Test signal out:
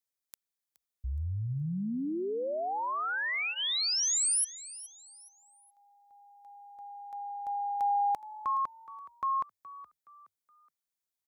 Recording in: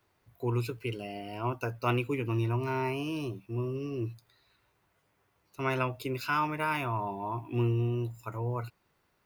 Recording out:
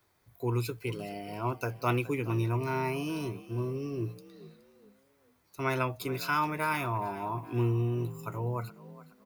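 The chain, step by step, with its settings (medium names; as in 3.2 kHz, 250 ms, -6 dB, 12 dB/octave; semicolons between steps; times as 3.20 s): treble shelf 4.6 kHz +6.5 dB; band-stop 2.8 kHz, Q 8.9; on a send: frequency-shifting echo 420 ms, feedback 36%, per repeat +45 Hz, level -17 dB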